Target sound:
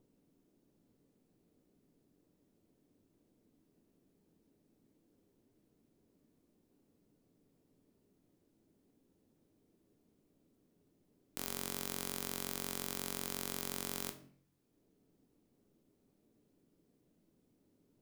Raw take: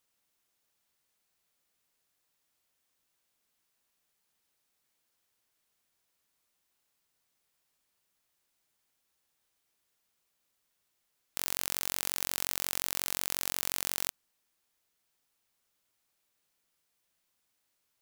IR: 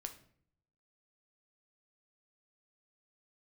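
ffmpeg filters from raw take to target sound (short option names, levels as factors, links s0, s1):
-filter_complex "[0:a]equalizer=f=260:w=0.65:g=14.5,acrossover=split=510[s0][s1];[s0]acompressor=mode=upward:threshold=0.00355:ratio=2.5[s2];[s2][s1]amix=inputs=2:normalize=0[s3];[1:a]atrim=start_sample=2205[s4];[s3][s4]afir=irnorm=-1:irlink=0,volume=0.596"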